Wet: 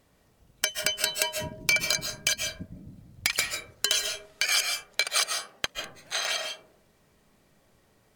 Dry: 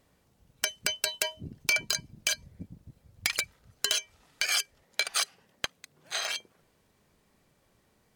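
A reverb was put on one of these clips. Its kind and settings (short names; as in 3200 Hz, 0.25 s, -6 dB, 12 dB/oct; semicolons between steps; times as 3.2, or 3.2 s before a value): digital reverb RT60 0.61 s, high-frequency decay 0.3×, pre-delay 0.105 s, DRR 3.5 dB; gain +2.5 dB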